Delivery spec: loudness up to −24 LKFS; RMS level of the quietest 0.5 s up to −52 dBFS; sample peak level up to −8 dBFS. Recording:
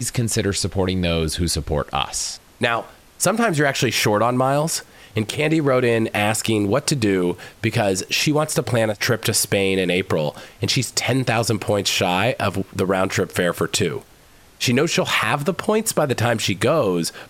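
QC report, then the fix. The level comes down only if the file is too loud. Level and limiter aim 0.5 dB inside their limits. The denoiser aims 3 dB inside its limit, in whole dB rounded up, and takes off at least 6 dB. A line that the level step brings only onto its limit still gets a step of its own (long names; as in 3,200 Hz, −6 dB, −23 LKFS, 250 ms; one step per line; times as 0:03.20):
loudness −20.0 LKFS: out of spec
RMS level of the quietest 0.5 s −49 dBFS: out of spec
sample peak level −4.0 dBFS: out of spec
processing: level −4.5 dB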